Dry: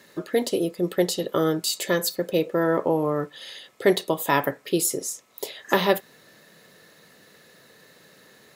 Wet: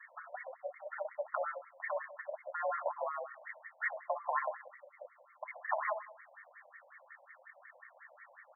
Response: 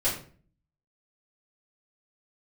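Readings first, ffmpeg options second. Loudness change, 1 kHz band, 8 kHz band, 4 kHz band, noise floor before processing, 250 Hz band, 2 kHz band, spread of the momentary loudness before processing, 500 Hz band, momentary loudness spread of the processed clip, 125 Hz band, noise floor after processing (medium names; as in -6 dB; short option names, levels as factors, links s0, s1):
-15.0 dB, -8.5 dB, under -40 dB, under -40 dB, -55 dBFS, under -40 dB, -9.5 dB, 10 LU, -17.0 dB, 20 LU, under -40 dB, -64 dBFS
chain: -filter_complex "[0:a]acompressor=threshold=0.0398:ratio=5,flanger=delay=9.1:depth=3.8:regen=82:speed=0.61:shape=triangular,highpass=f=390:t=q:w=0.5412,highpass=f=390:t=q:w=1.307,lowpass=f=3300:t=q:w=0.5176,lowpass=f=3300:t=q:w=0.7071,lowpass=f=3300:t=q:w=1.932,afreqshift=66,crystalizer=i=7.5:c=0,asplit=2[s0][s1];[s1]adelay=64,lowpass=f=2500:p=1,volume=0.398,asplit=2[s2][s3];[s3]adelay=64,lowpass=f=2500:p=1,volume=0.52,asplit=2[s4][s5];[s5]adelay=64,lowpass=f=2500:p=1,volume=0.52,asplit=2[s6][s7];[s7]adelay=64,lowpass=f=2500:p=1,volume=0.52,asplit=2[s8][s9];[s9]adelay=64,lowpass=f=2500:p=1,volume=0.52,asplit=2[s10][s11];[s11]adelay=64,lowpass=f=2500:p=1,volume=0.52[s12];[s0][s2][s4][s6][s8][s10][s12]amix=inputs=7:normalize=0,afftfilt=real='re*between(b*sr/1024,670*pow(1600/670,0.5+0.5*sin(2*PI*5.5*pts/sr))/1.41,670*pow(1600/670,0.5+0.5*sin(2*PI*5.5*pts/sr))*1.41)':imag='im*between(b*sr/1024,670*pow(1600/670,0.5+0.5*sin(2*PI*5.5*pts/sr))/1.41,670*pow(1600/670,0.5+0.5*sin(2*PI*5.5*pts/sr))*1.41)':win_size=1024:overlap=0.75,volume=1.33"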